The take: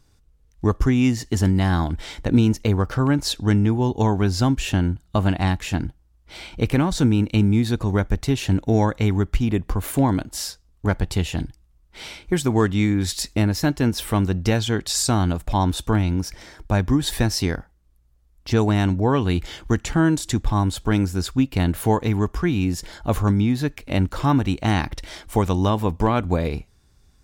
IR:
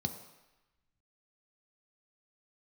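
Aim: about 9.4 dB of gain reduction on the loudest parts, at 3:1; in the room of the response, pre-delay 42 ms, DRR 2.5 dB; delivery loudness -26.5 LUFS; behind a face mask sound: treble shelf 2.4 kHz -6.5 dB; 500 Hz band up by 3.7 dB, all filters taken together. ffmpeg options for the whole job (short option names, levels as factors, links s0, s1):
-filter_complex "[0:a]equalizer=f=500:t=o:g=5,acompressor=threshold=0.0562:ratio=3,asplit=2[s0][s1];[1:a]atrim=start_sample=2205,adelay=42[s2];[s1][s2]afir=irnorm=-1:irlink=0,volume=0.596[s3];[s0][s3]amix=inputs=2:normalize=0,highshelf=f=2400:g=-6.5,volume=0.596"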